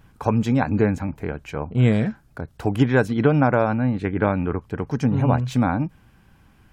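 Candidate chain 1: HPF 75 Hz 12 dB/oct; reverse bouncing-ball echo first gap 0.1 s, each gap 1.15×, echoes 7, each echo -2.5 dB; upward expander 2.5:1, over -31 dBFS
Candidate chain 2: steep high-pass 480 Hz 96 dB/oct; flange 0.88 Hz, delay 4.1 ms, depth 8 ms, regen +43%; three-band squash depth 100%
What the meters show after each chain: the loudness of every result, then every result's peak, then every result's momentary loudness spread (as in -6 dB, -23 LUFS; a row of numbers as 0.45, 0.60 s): -24.5, -32.5 LUFS; -3.5, -13.5 dBFS; 20, 9 LU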